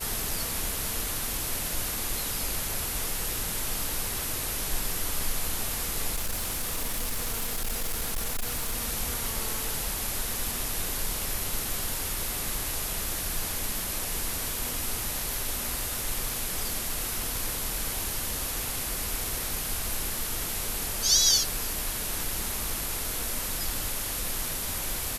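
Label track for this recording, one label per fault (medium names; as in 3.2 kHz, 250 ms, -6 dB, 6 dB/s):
6.150000	8.760000	clipped -25.5 dBFS
15.340000	15.340000	pop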